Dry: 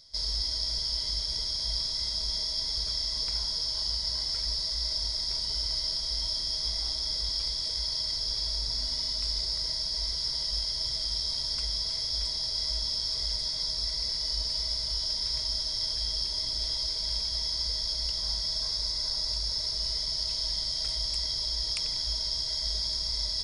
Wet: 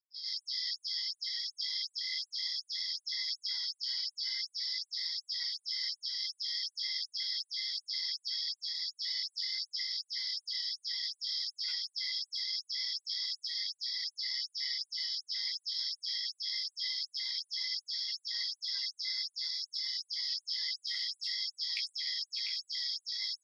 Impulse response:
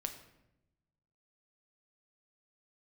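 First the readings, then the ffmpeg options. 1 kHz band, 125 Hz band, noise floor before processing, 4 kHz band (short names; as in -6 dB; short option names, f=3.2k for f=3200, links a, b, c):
under -20 dB, under -40 dB, -33 dBFS, -6.0 dB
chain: -filter_complex "[0:a]aecho=1:1:6.9:0.38,asplit=2[a][b];[1:a]atrim=start_sample=2205,adelay=100[c];[b][c]afir=irnorm=-1:irlink=0,volume=6.5dB[d];[a][d]amix=inputs=2:normalize=0,flanger=delay=18.5:depth=6.3:speed=0.6,tiltshelf=f=970:g=-6.5,afftdn=nr=25:nf=-39,firequalizer=gain_entry='entry(110,0);entry(590,-18);entry(1300,-10);entry(1900,6);entry(3100,-6);entry(7400,-27)':delay=0.05:min_phase=1,asplit=2[e][f];[f]adelay=597,lowpass=f=1.5k:p=1,volume=-5.5dB,asplit=2[g][h];[h]adelay=597,lowpass=f=1.5k:p=1,volume=0.4,asplit=2[i][j];[j]adelay=597,lowpass=f=1.5k:p=1,volume=0.4,asplit=2[k][l];[l]adelay=597,lowpass=f=1.5k:p=1,volume=0.4,asplit=2[m][n];[n]adelay=597,lowpass=f=1.5k:p=1,volume=0.4[o];[e][g][i][k][m][o]amix=inputs=6:normalize=0,afftfilt=real='re*gte(b*sr/1024,620*pow(7500/620,0.5+0.5*sin(2*PI*2.7*pts/sr)))':imag='im*gte(b*sr/1024,620*pow(7500/620,0.5+0.5*sin(2*PI*2.7*pts/sr)))':win_size=1024:overlap=0.75"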